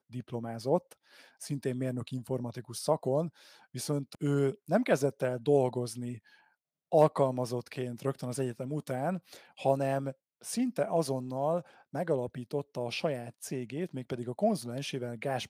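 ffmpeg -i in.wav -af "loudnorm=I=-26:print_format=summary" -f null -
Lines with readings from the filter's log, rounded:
Input Integrated:    -33.0 LUFS
Input True Peak:     -10.4 dBTP
Input LRA:             4.3 LU
Input Threshold:     -43.3 LUFS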